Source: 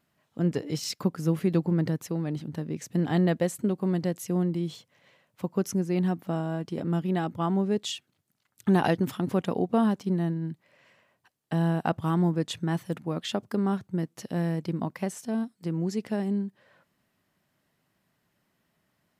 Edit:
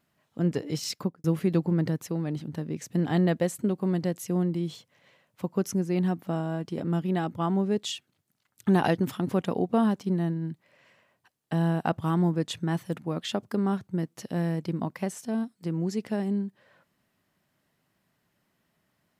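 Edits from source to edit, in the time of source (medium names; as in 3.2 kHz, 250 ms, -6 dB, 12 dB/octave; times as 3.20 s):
0.96–1.24 s: studio fade out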